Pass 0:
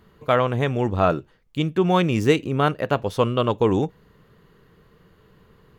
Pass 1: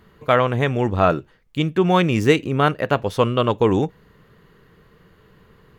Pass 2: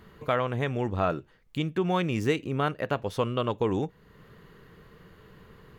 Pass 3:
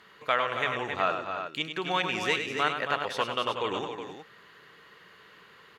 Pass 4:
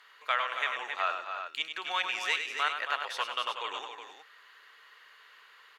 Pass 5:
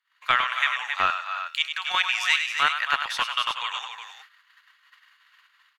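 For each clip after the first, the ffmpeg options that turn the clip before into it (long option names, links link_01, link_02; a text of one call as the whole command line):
ffmpeg -i in.wav -af "equalizer=frequency=1900:width=1.5:gain=3,volume=2dB" out.wav
ffmpeg -i in.wav -af "acompressor=threshold=-40dB:ratio=1.5" out.wav
ffmpeg -i in.wav -af "bandpass=frequency=3000:width_type=q:width=0.57:csg=0,aecho=1:1:101|190|272|279|367:0.398|0.126|0.376|0.141|0.335,volume=6dB" out.wav
ffmpeg -i in.wav -af "highpass=950,volume=-1dB" out.wav
ffmpeg -i in.wav -filter_complex "[0:a]agate=range=-32dB:threshold=-54dB:ratio=16:detection=peak,acrossover=split=870[link_01][link_02];[link_01]acrusher=bits=4:mix=0:aa=0.5[link_03];[link_03][link_02]amix=inputs=2:normalize=0,volume=8.5dB" out.wav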